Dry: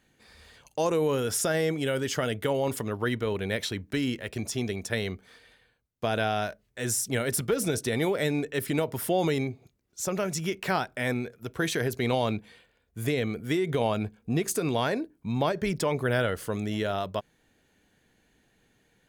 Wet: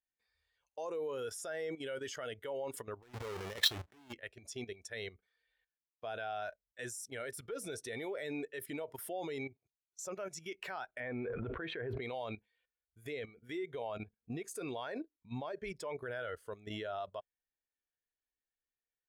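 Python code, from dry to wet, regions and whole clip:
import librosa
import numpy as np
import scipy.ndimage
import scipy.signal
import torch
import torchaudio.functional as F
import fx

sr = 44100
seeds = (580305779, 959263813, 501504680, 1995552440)

y = fx.chain(x, sr, fx.halfwave_hold(),
    fx.highpass(hz=52.0, slope=12),
    fx.over_compress(threshold_db=-28.0, ratio=-0.5), at=(3.02, 4.13))
y = fx.chain(y, sr, fx.law_mismatch(coded='mu'),
    fx.air_absorb(metres=490.0),
    fx.env_flatten(amount_pct=100), at=(11.0, 12.02))
y = fx.peak_eq(y, sr, hz=170.0, db=-13.5, octaves=2.4)
y = fx.level_steps(y, sr, step_db=13)
y = fx.spectral_expand(y, sr, expansion=1.5)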